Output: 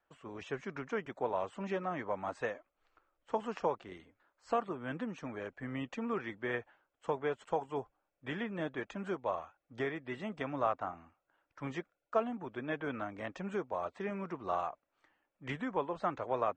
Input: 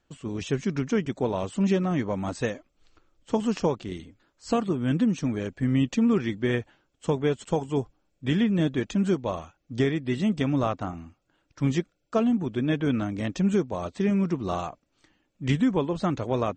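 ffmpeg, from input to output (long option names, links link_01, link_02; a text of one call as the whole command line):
ffmpeg -i in.wav -filter_complex "[0:a]acrossover=split=530 2100:gain=0.126 1 0.126[link_01][link_02][link_03];[link_01][link_02][link_03]amix=inputs=3:normalize=0,volume=-1.5dB" out.wav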